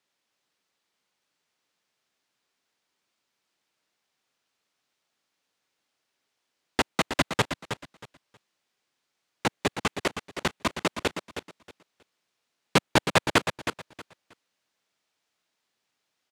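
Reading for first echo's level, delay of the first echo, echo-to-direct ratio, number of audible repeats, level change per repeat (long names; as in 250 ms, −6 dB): −9.0 dB, 317 ms, −9.0 dB, 2, −13.0 dB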